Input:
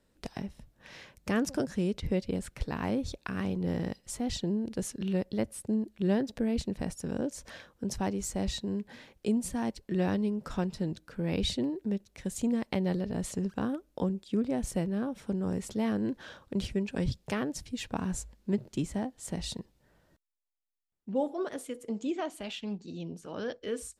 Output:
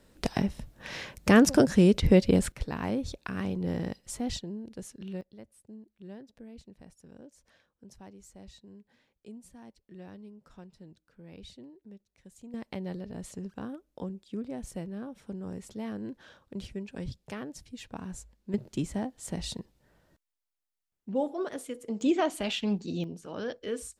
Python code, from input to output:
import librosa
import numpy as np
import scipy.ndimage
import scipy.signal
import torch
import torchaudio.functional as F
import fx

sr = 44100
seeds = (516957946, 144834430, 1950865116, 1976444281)

y = fx.gain(x, sr, db=fx.steps((0.0, 10.0), (2.52, 0.0), (4.39, -8.0), (5.21, -18.0), (12.54, -7.0), (18.54, 0.5), (22.01, 7.5), (23.04, 0.5)))